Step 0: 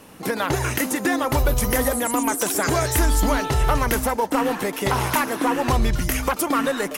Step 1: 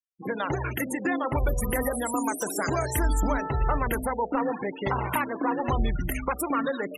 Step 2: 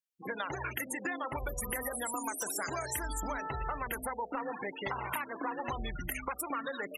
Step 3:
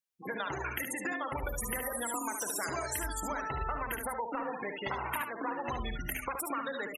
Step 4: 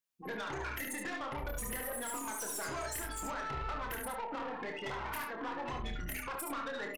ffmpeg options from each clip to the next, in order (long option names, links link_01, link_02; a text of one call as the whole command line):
ffmpeg -i in.wav -af "afftfilt=real='re*gte(hypot(re,im),0.0794)':imag='im*gte(hypot(re,im),0.0794)':win_size=1024:overlap=0.75,bandreject=frequency=62.43:width_type=h:width=4,bandreject=frequency=124.86:width_type=h:width=4,bandreject=frequency=187.29:width_type=h:width=4,bandreject=frequency=249.72:width_type=h:width=4,bandreject=frequency=312.15:width_type=h:width=4,bandreject=frequency=374.58:width_type=h:width=4,bandreject=frequency=437.01:width_type=h:width=4,bandreject=frequency=499.44:width_type=h:width=4,bandreject=frequency=561.87:width_type=h:width=4,bandreject=frequency=624.3:width_type=h:width=4,bandreject=frequency=686.73:width_type=h:width=4,bandreject=frequency=749.16:width_type=h:width=4,volume=-5dB" out.wav
ffmpeg -i in.wav -af "tiltshelf=frequency=650:gain=-6,acompressor=threshold=-27dB:ratio=6,volume=-5.5dB" out.wav
ffmpeg -i in.wav -af "aecho=1:1:59|72:0.211|0.473" out.wav
ffmpeg -i in.wav -filter_complex "[0:a]aeval=exprs='(tanh(63.1*val(0)+0.2)-tanh(0.2))/63.1':channel_layout=same,asplit=2[link_01][link_02];[link_02]adelay=28,volume=-6dB[link_03];[link_01][link_03]amix=inputs=2:normalize=0" out.wav